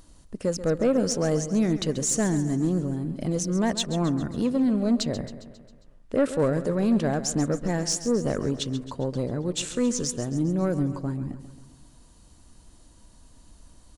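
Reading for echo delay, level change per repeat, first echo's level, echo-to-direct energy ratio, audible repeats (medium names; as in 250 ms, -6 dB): 135 ms, -5.0 dB, -13.0 dB, -11.5 dB, 5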